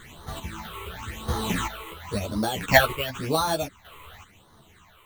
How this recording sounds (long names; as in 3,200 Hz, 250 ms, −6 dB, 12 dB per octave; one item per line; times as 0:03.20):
aliases and images of a low sample rate 5,000 Hz, jitter 0%
phaser sweep stages 8, 0.94 Hz, lowest notch 210–2,500 Hz
chopped level 0.78 Hz, depth 65%, duty 30%
a shimmering, thickened sound